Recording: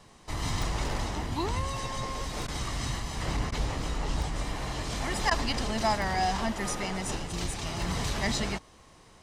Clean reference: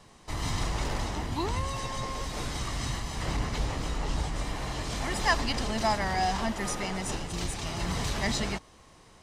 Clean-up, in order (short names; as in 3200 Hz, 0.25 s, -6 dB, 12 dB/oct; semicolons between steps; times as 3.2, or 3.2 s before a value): de-click; interpolate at 2.47/3.51/5.3, 10 ms